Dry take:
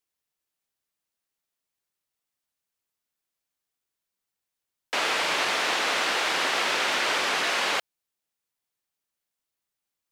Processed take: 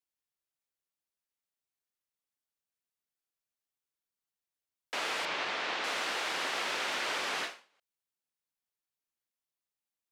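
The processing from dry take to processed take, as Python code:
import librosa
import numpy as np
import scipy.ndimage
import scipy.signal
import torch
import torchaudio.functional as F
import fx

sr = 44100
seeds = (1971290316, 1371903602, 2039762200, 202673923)

y = fx.lowpass(x, sr, hz=4600.0, slope=12, at=(5.25, 5.84))
y = fx.end_taper(y, sr, db_per_s=160.0)
y = F.gain(torch.from_numpy(y), -8.5).numpy()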